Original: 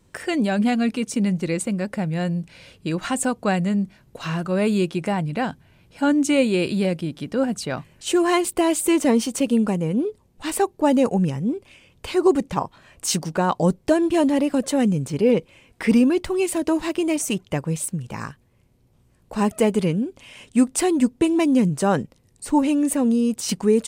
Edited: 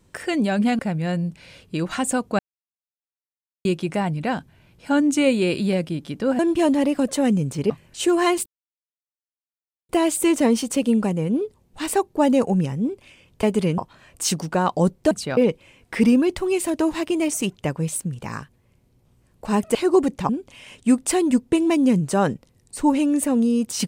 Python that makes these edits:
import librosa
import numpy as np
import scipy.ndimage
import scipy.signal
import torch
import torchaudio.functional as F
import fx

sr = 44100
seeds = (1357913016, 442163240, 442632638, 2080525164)

y = fx.edit(x, sr, fx.cut(start_s=0.79, length_s=1.12),
    fx.silence(start_s=3.51, length_s=1.26),
    fx.swap(start_s=7.51, length_s=0.26, other_s=13.94, other_length_s=1.31),
    fx.insert_silence(at_s=8.53, length_s=1.43),
    fx.swap(start_s=12.07, length_s=0.54, other_s=19.63, other_length_s=0.35), tone=tone)